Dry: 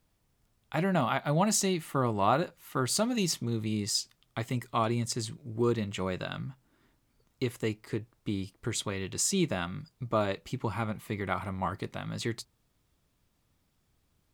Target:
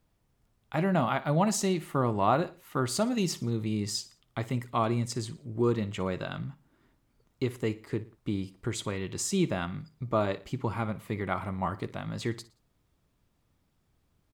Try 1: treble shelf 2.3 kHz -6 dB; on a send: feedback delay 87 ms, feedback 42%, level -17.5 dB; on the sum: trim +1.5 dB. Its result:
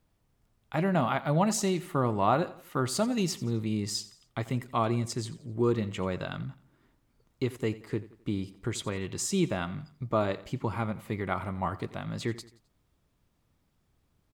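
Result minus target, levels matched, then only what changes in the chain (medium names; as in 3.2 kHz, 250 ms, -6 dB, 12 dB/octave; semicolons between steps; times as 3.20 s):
echo 29 ms late
change: feedback delay 58 ms, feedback 42%, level -17.5 dB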